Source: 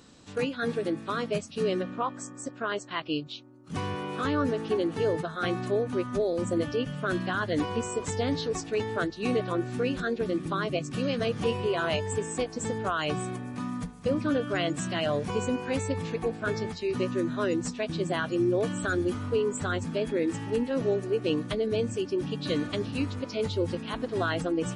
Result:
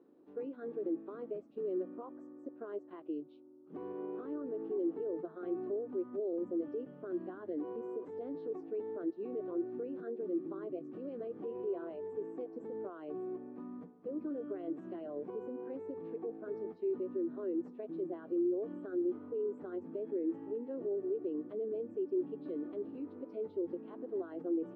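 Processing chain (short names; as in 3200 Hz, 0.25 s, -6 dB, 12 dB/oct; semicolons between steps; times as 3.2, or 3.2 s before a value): limiter -25 dBFS, peak gain reduction 9.5 dB; ladder band-pass 390 Hz, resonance 60%; gain +2.5 dB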